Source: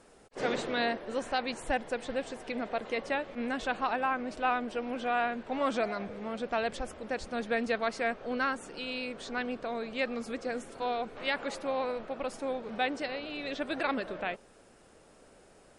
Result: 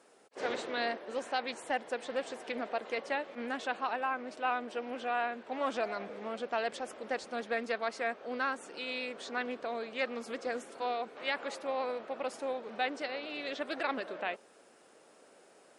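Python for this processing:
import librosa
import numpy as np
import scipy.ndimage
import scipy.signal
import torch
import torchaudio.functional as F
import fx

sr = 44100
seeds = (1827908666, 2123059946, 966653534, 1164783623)

p1 = scipy.signal.sosfilt(scipy.signal.butter(2, 300.0, 'highpass', fs=sr, output='sos'), x)
p2 = fx.rider(p1, sr, range_db=10, speed_s=0.5)
p3 = p1 + (p2 * librosa.db_to_amplitude(0.0))
p4 = fx.doppler_dist(p3, sr, depth_ms=0.13)
y = p4 * librosa.db_to_amplitude(-8.0)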